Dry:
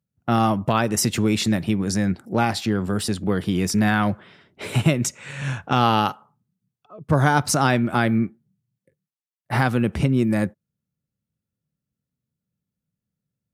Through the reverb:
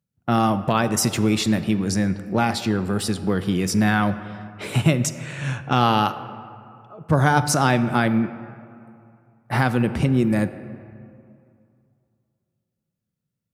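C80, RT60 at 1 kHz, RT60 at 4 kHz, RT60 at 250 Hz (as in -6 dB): 13.5 dB, 2.5 s, 1.3 s, 2.5 s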